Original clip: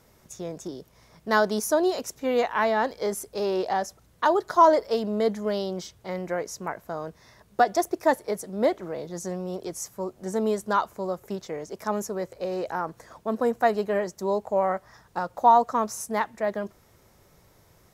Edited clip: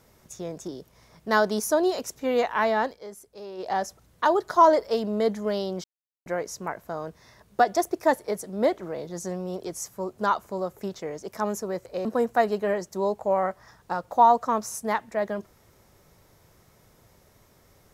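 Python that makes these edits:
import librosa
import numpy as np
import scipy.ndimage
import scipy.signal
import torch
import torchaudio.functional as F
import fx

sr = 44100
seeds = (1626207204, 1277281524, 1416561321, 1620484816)

y = fx.edit(x, sr, fx.fade_down_up(start_s=2.75, length_s=1.06, db=-13.0, fade_s=0.24, curve='qsin'),
    fx.silence(start_s=5.84, length_s=0.42),
    fx.cut(start_s=10.18, length_s=0.47),
    fx.cut(start_s=12.52, length_s=0.79), tone=tone)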